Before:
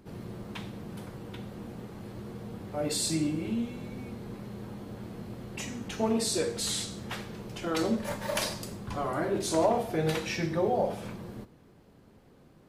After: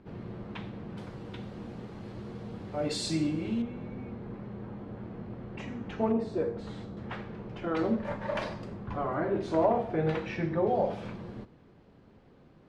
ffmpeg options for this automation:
ffmpeg -i in.wav -af "asetnsamples=nb_out_samples=441:pad=0,asendcmd='0.98 lowpass f 5200;3.62 lowpass f 2000;6.12 lowpass f 1100;6.97 lowpass f 2000;10.67 lowpass f 3900',lowpass=2900" out.wav

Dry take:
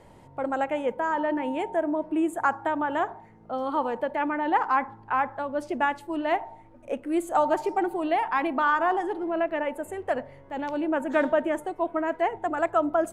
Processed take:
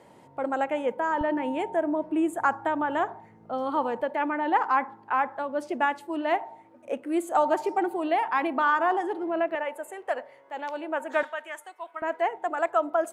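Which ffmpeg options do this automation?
ffmpeg -i in.wav -af "asetnsamples=nb_out_samples=441:pad=0,asendcmd='1.21 highpass f 78;4.02 highpass f 220;9.55 highpass f 550;11.23 highpass f 1400;12.02 highpass f 440',highpass=180" out.wav

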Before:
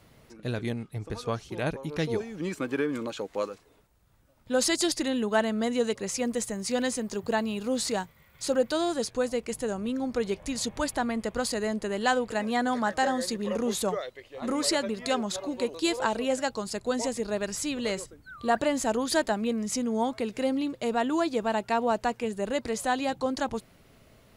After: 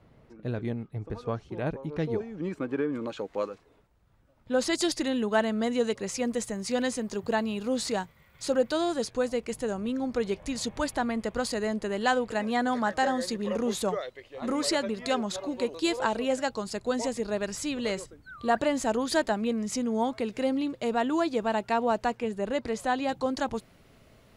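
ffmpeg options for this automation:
ffmpeg -i in.wav -af "asetnsamples=nb_out_samples=441:pad=0,asendcmd='3.03 lowpass f 2600;4.73 lowpass f 6200;22.15 lowpass f 3300;23.09 lowpass f 8400',lowpass=frequency=1100:poles=1" out.wav

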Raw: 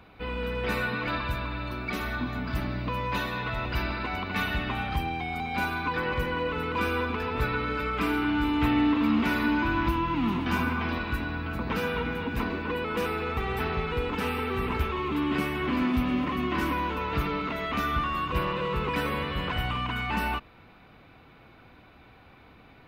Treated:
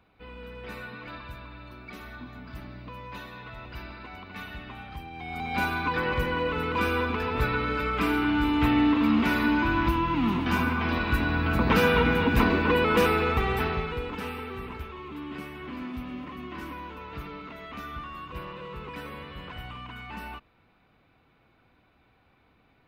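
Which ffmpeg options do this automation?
ffmpeg -i in.wav -af "volume=8dB,afade=type=in:start_time=5.11:duration=0.47:silence=0.237137,afade=type=in:start_time=10.79:duration=0.83:silence=0.473151,afade=type=out:start_time=12.92:duration=1.05:silence=0.266073,afade=type=out:start_time=13.97:duration=0.85:silence=0.446684" out.wav

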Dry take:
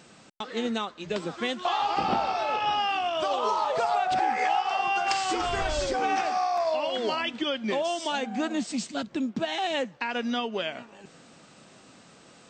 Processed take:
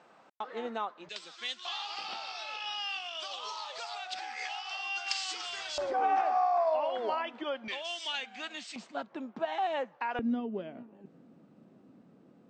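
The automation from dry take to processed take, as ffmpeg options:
ffmpeg -i in.wav -af "asetnsamples=nb_out_samples=441:pad=0,asendcmd='1.09 bandpass f 4400;5.78 bandpass f 840;7.68 bandpass f 2900;8.76 bandpass f 900;10.19 bandpass f 240',bandpass=frequency=870:width_type=q:width=1.3:csg=0" out.wav

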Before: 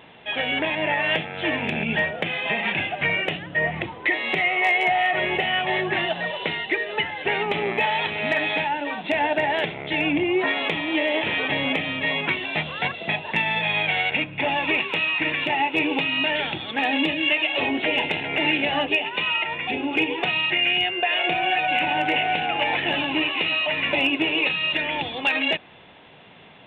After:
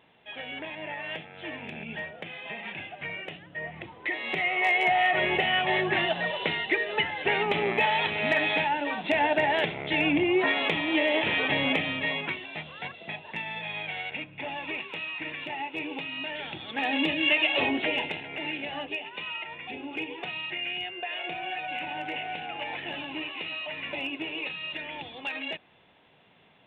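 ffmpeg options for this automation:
ffmpeg -i in.wav -af "volume=9dB,afade=type=in:start_time=3.75:duration=1.29:silence=0.266073,afade=type=out:start_time=11.78:duration=0.69:silence=0.316228,afade=type=in:start_time=16.37:duration=1.12:silence=0.281838,afade=type=out:start_time=17.49:duration=0.78:silence=0.281838" out.wav

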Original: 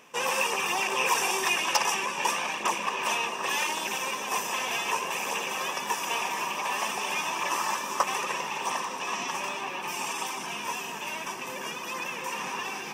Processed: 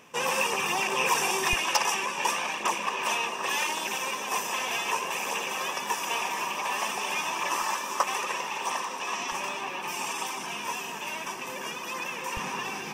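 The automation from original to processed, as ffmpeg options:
ffmpeg -i in.wav -af "asetnsamples=nb_out_samples=441:pad=0,asendcmd='1.53 equalizer g -2;7.62 equalizer g -8;9.32 equalizer g -1;12.37 equalizer g 9',equalizer=frequency=77:width_type=o:width=2.6:gain=8.5" out.wav

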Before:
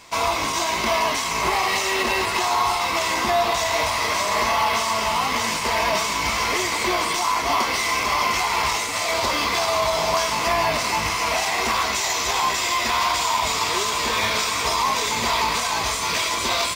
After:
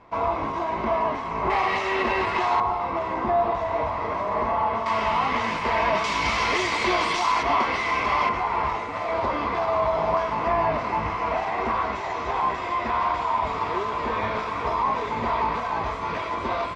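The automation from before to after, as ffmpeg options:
ffmpeg -i in.wav -af "asetnsamples=nb_out_samples=441:pad=0,asendcmd='1.5 lowpass f 2100;2.6 lowpass f 1000;4.86 lowpass f 2200;6.04 lowpass f 3900;7.43 lowpass f 2300;8.29 lowpass f 1300',lowpass=1100" out.wav

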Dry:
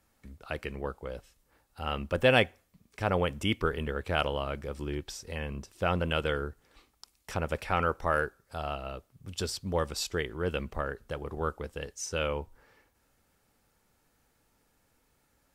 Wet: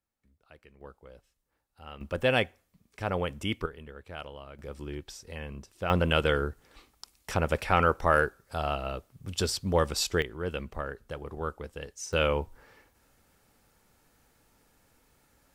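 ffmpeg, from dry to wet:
ffmpeg -i in.wav -af "asetnsamples=nb_out_samples=441:pad=0,asendcmd='0.81 volume volume -12dB;2.01 volume volume -2.5dB;3.66 volume volume -12.5dB;4.59 volume volume -3.5dB;5.9 volume volume 4.5dB;10.22 volume volume -2dB;12.13 volume volume 5dB',volume=-19dB" out.wav

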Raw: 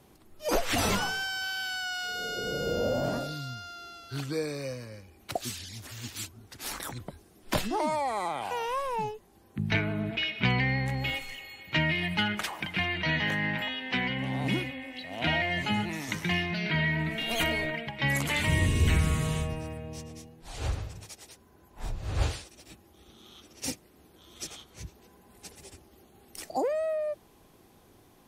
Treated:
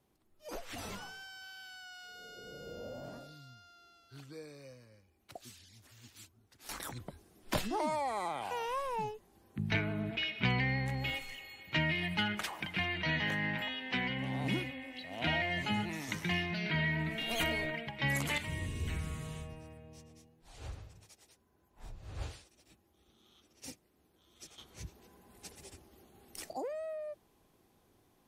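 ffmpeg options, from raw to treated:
ffmpeg -i in.wav -af "asetnsamples=nb_out_samples=441:pad=0,asendcmd='6.69 volume volume -5dB;18.38 volume volume -13.5dB;24.58 volume volume -3.5dB;26.53 volume volume -10.5dB',volume=-16.5dB" out.wav

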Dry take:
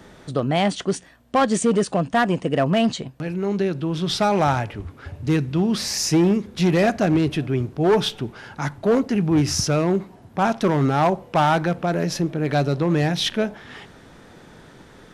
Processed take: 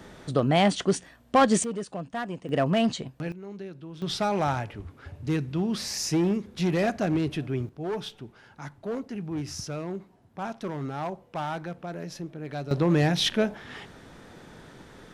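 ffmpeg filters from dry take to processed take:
ffmpeg -i in.wav -af "asetnsamples=nb_out_samples=441:pad=0,asendcmd='1.64 volume volume -13.5dB;2.49 volume volume -4.5dB;3.32 volume volume -17dB;4.02 volume volume -7dB;7.69 volume volume -14dB;12.71 volume volume -2dB',volume=-1dB" out.wav

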